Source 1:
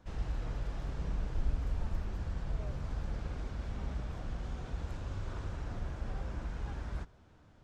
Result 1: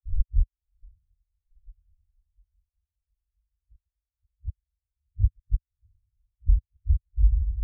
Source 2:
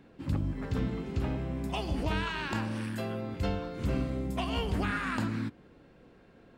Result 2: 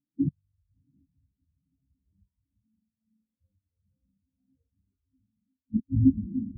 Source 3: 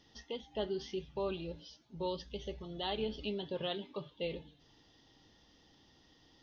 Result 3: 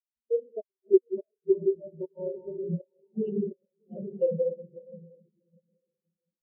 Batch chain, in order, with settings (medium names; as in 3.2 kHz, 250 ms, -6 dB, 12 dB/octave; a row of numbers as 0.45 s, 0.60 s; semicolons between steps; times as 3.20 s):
local Wiener filter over 41 samples; hum notches 60/120/180/240/300/360/420/480 Hz; simulated room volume 120 m³, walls hard, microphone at 0.46 m; in parallel at -5.5 dB: one-sided clip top -27.5 dBFS; on the sum: low-pass that closes with the level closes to 1.5 kHz, closed at -24.5 dBFS; inverted gate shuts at -23 dBFS, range -26 dB; compression 2:1, threshold -37 dBFS; on a send: echo that smears into a reverb 703 ms, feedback 61%, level -9 dB; on the sum: spectral contrast expander 4:1; peak normalisation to -9 dBFS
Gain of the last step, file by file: +18.5 dB, +17.5 dB, +16.0 dB